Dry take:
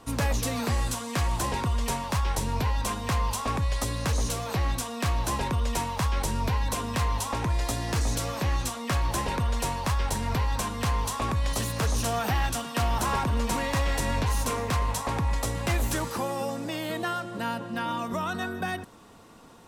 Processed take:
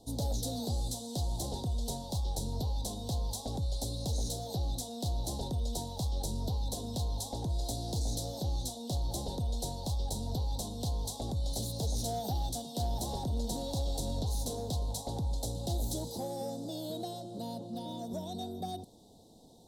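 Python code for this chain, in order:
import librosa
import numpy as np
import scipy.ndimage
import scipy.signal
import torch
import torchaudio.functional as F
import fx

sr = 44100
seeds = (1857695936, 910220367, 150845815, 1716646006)

p1 = scipy.signal.sosfilt(scipy.signal.ellip(3, 1.0, 40, [780.0, 3800.0], 'bandstop', fs=sr, output='sos'), x)
p2 = fx.peak_eq(p1, sr, hz=3900.0, db=4.5, octaves=0.52)
p3 = 10.0 ** (-32.5 / 20.0) * np.tanh(p2 / 10.0 ** (-32.5 / 20.0))
p4 = p2 + (p3 * librosa.db_to_amplitude(-9.0))
y = p4 * librosa.db_to_amplitude(-7.5)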